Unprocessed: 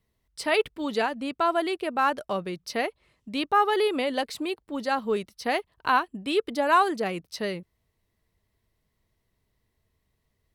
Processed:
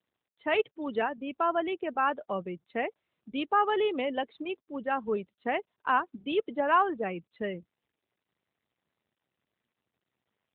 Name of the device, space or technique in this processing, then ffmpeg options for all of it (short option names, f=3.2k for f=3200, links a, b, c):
mobile call with aggressive noise cancelling: -af "highpass=f=120:w=0.5412,highpass=f=120:w=1.3066,lowpass=f=5.6k:w=0.5412,lowpass=f=5.6k:w=1.3066,afftdn=nr=16:nf=-34,volume=-3dB" -ar 8000 -c:a libopencore_amrnb -b:a 12200